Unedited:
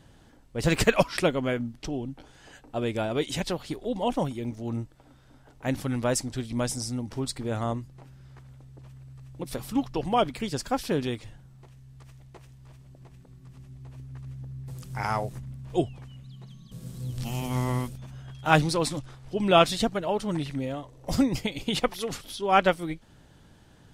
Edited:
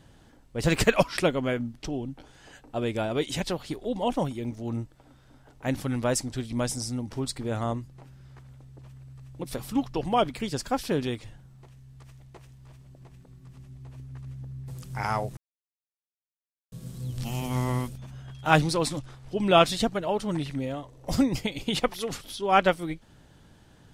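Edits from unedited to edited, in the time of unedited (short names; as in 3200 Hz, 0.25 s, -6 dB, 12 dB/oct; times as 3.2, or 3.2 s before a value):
15.37–16.72 mute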